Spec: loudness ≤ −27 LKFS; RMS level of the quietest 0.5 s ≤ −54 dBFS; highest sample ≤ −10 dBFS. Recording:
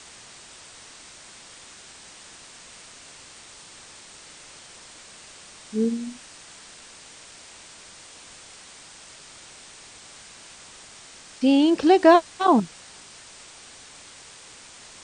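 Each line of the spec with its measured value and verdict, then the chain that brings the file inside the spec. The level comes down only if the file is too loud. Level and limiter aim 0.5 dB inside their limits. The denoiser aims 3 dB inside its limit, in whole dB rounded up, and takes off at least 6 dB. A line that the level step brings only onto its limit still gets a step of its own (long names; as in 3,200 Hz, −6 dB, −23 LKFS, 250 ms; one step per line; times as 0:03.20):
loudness −20.0 LKFS: out of spec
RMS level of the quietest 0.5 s −46 dBFS: out of spec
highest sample −4.5 dBFS: out of spec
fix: broadband denoise 6 dB, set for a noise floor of −46 dBFS
level −7.5 dB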